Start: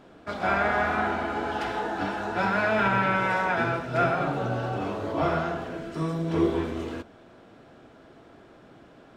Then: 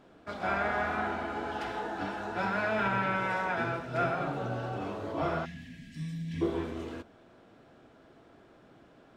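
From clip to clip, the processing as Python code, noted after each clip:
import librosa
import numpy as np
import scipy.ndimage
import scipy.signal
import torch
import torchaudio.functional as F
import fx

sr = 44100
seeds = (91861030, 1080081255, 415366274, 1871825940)

y = fx.spec_box(x, sr, start_s=5.45, length_s=0.97, low_hz=290.0, high_hz=1600.0, gain_db=-26)
y = y * librosa.db_to_amplitude(-6.0)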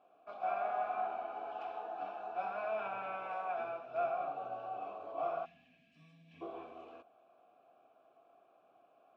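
y = fx.vowel_filter(x, sr, vowel='a')
y = y * librosa.db_to_amplitude(1.5)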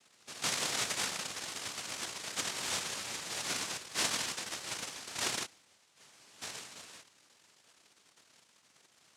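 y = fx.notch(x, sr, hz=570.0, q=12.0)
y = fx.noise_vocoder(y, sr, seeds[0], bands=1)
y = y * librosa.db_to_amplitude(1.5)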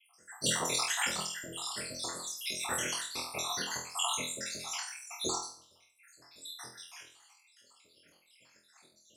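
y = fx.spec_dropout(x, sr, seeds[1], share_pct=82)
y = fx.room_flutter(y, sr, wall_m=4.1, rt60_s=0.43)
y = y * librosa.db_to_amplitude(6.5)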